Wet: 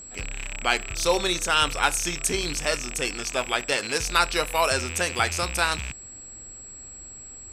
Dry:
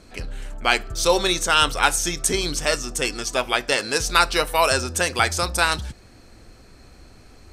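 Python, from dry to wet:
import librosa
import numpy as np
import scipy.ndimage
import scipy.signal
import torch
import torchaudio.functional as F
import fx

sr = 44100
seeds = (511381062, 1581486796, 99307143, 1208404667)

y = fx.rattle_buzz(x, sr, strikes_db=-38.0, level_db=-17.0)
y = y + 10.0 ** (-36.0 / 20.0) * np.sin(2.0 * np.pi * 7700.0 * np.arange(len(y)) / sr)
y = y * 10.0 ** (-4.0 / 20.0)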